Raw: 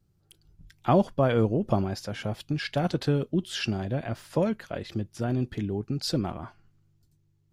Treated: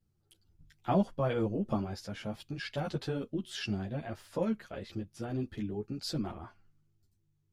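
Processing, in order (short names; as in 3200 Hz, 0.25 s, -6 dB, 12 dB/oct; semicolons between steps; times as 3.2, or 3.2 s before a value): wow and flutter 17 cents; ensemble effect; gain -4 dB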